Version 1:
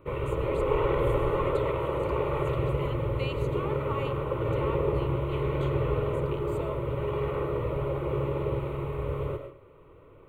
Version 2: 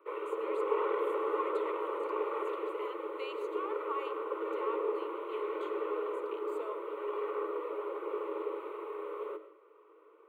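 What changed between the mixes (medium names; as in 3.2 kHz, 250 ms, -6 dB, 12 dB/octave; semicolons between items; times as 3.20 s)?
background: send -7.0 dB; master: add rippled Chebyshev high-pass 310 Hz, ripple 9 dB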